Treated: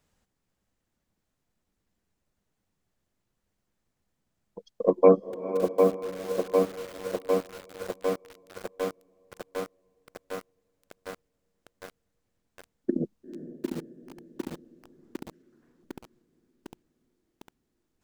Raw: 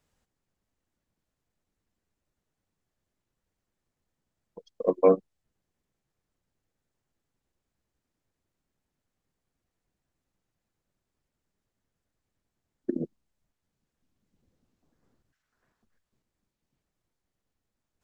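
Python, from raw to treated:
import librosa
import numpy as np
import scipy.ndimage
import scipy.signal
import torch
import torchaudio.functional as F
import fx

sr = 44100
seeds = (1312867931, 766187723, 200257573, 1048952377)

y = fx.peak_eq(x, sr, hz=200.0, db=3.5, octaves=0.26)
y = fx.echo_diffused(y, sr, ms=472, feedback_pct=60, wet_db=-12)
y = fx.echo_crushed(y, sr, ms=753, feedback_pct=80, bits=7, wet_db=-4)
y = y * librosa.db_to_amplitude(2.5)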